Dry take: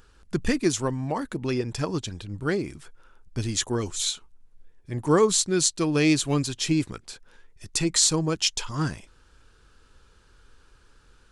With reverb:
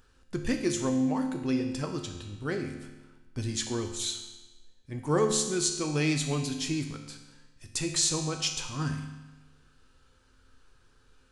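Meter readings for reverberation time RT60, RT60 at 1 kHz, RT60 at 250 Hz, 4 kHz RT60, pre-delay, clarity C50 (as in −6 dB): 1.2 s, 1.2 s, 1.2 s, 1.1 s, 4 ms, 6.5 dB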